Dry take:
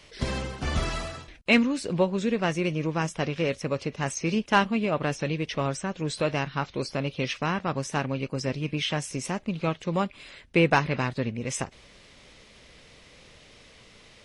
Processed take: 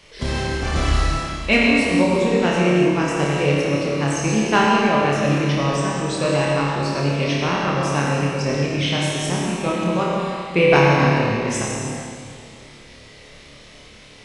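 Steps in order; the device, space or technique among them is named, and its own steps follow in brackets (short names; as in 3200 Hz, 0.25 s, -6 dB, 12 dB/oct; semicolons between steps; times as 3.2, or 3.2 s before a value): tunnel (flutter echo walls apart 4.8 m, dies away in 0.47 s; reverb RT60 2.3 s, pre-delay 69 ms, DRR -1.5 dB); gain +2 dB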